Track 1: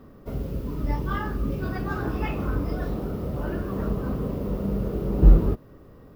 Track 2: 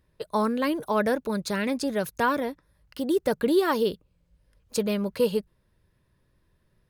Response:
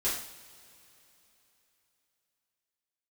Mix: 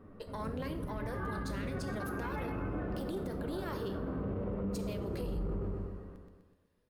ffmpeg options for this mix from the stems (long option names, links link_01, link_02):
-filter_complex "[0:a]lowpass=frequency=2500:width=0.5412,lowpass=frequency=2500:width=1.3066,flanger=delay=9.6:depth=2.1:regen=14:speed=1.1:shape=triangular,volume=-2dB,asplit=2[link_01][link_02];[link_02]volume=-4.5dB[link_03];[1:a]lowshelf=frequency=200:gain=-8.5,alimiter=limit=-24dB:level=0:latency=1:release=388,aeval=exprs='0.0631*(cos(1*acos(clip(val(0)/0.0631,-1,1)))-cos(1*PI/2))+0.0112*(cos(2*acos(clip(val(0)/0.0631,-1,1)))-cos(2*PI/2))':channel_layout=same,volume=-10dB,asplit=3[link_04][link_05][link_06];[link_05]volume=-12dB[link_07];[link_06]apad=whole_len=271618[link_08];[link_01][link_08]sidechaincompress=threshold=-50dB:ratio=8:attack=16:release=459[link_09];[2:a]atrim=start_sample=2205[link_10];[link_07][link_10]afir=irnorm=-1:irlink=0[link_11];[link_03]aecho=0:1:125|250|375|500|625|750|875|1000:1|0.55|0.303|0.166|0.0915|0.0503|0.0277|0.0152[link_12];[link_09][link_04][link_11][link_12]amix=inputs=4:normalize=0,alimiter=level_in=5dB:limit=-24dB:level=0:latency=1:release=22,volume=-5dB"